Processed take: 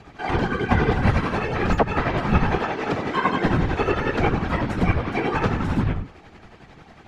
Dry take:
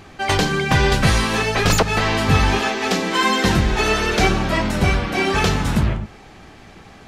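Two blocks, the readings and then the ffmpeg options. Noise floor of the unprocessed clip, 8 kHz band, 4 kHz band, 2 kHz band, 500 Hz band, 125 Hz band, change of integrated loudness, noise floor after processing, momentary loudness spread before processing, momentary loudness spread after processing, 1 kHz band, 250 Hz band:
-44 dBFS, under -20 dB, -14.0 dB, -6.5 dB, -3.0 dB, -3.5 dB, -4.5 dB, -48 dBFS, 4 LU, 4 LU, -3.5 dB, -2.5 dB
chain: -filter_complex "[0:a]bandreject=f=600:w=12,afftfilt=real='hypot(re,im)*cos(2*PI*random(0))':imag='hypot(re,im)*sin(2*PI*random(1))':win_size=512:overlap=0.75,acrossover=split=120|2300[a][b][c];[c]acompressor=threshold=-42dB:ratio=12[d];[a][b][d]amix=inputs=3:normalize=0,tremolo=f=11:d=0.5,aemphasis=mode=reproduction:type=50kf,volume=5.5dB"

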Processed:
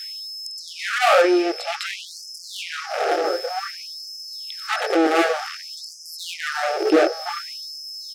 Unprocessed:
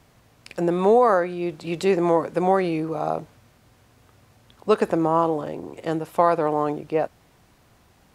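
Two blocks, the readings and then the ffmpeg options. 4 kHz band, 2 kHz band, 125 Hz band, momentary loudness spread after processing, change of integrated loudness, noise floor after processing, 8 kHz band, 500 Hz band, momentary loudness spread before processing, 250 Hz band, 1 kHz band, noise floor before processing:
+16.5 dB, +10.5 dB, under -30 dB, 15 LU, -0.5 dB, -39 dBFS, n/a, -1.0 dB, 12 LU, 0.0 dB, -0.5 dB, -58 dBFS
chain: -filter_complex "[0:a]highpass=97,asubboost=boost=11:cutoff=200,acrossover=split=2700[a][b];[a]flanger=delay=18:depth=6.2:speed=0.62[c];[b]acompressor=threshold=-57dB:ratio=6[d];[c][d]amix=inputs=2:normalize=0,aeval=exprs='val(0)+0.00282*sin(2*PI*5200*n/s)':c=same,asplit=2[e][f];[f]adelay=1073,lowpass=f=2k:p=1,volume=-12.5dB,asplit=2[g][h];[h]adelay=1073,lowpass=f=2k:p=1,volume=0.53,asplit=2[i][j];[j]adelay=1073,lowpass=f=2k:p=1,volume=0.53,asplit=2[k][l];[l]adelay=1073,lowpass=f=2k:p=1,volume=0.53,asplit=2[m][n];[n]adelay=1073,lowpass=f=2k:p=1,volume=0.53[o];[e][g][i][k][m][o]amix=inputs=6:normalize=0,apsyclip=18dB,aeval=exprs='1.06*(cos(1*acos(clip(val(0)/1.06,-1,1)))-cos(1*PI/2))+0.237*(cos(4*acos(clip(val(0)/1.06,-1,1)))-cos(4*PI/2))+0.266*(cos(6*acos(clip(val(0)/1.06,-1,1)))-cos(6*PI/2))+0.00944*(cos(7*acos(clip(val(0)/1.06,-1,1)))-cos(7*PI/2))+0.168*(cos(8*acos(clip(val(0)/1.06,-1,1)))-cos(8*PI/2))':c=same,asoftclip=type=tanh:threshold=-12dB,asuperstop=centerf=1000:order=4:qfactor=3.3,afftfilt=real='re*gte(b*sr/1024,300*pow(4900/300,0.5+0.5*sin(2*PI*0.54*pts/sr)))':imag='im*gte(b*sr/1024,300*pow(4900/300,0.5+0.5*sin(2*PI*0.54*pts/sr)))':win_size=1024:overlap=0.75,volume=2.5dB"

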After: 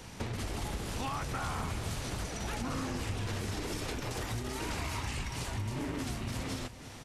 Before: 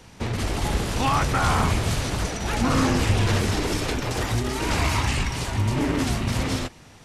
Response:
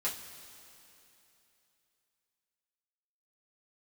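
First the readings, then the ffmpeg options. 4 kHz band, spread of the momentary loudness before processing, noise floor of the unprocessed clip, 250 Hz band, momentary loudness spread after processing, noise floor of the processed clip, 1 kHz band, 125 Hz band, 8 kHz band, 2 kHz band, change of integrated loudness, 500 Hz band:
-12.0 dB, 6 LU, -48 dBFS, -13.0 dB, 2 LU, -47 dBFS, -13.5 dB, -13.0 dB, -10.5 dB, -12.5 dB, -13.0 dB, -12.5 dB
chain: -af "highshelf=f=8.9k:g=5,acompressor=threshold=-36dB:ratio=4,aecho=1:1:338:0.178"

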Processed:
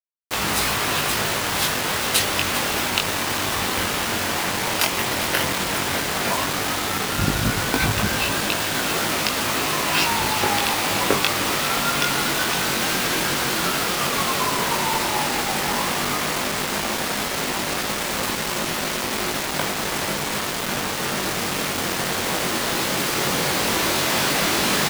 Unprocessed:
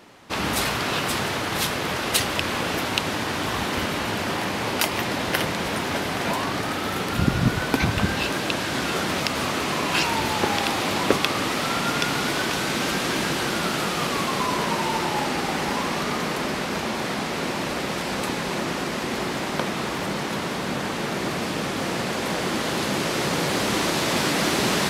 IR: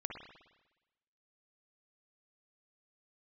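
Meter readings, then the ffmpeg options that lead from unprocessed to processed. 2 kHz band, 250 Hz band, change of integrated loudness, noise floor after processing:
+3.0 dB, -1.5 dB, +3.0 dB, -26 dBFS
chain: -filter_complex "[0:a]equalizer=f=220:w=0.44:g=-4.5,flanger=delay=19:depth=2.8:speed=0.11,asplit=2[a][b];[b]aecho=0:1:403:0.237[c];[a][c]amix=inputs=2:normalize=0,acrusher=bits=4:mix=0:aa=0.000001,volume=5.5dB"

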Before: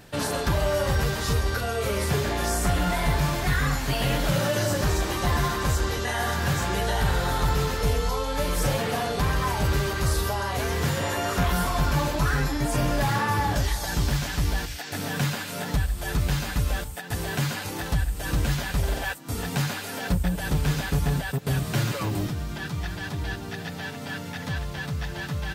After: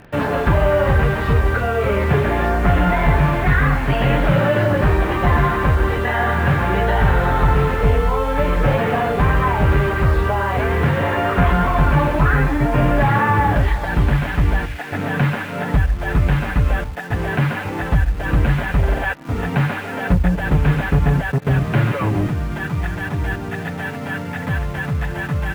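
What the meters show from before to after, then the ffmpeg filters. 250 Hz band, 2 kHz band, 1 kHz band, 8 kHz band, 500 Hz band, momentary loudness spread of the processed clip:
+8.5 dB, +8.5 dB, +8.5 dB, under -10 dB, +8.5 dB, 7 LU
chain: -filter_complex "[0:a]lowpass=f=2.5k:w=0.5412,lowpass=f=2.5k:w=1.3066,asplit=2[a][b];[b]acrusher=bits=6:mix=0:aa=0.000001,volume=-7dB[c];[a][c]amix=inputs=2:normalize=0,volume=5.5dB"

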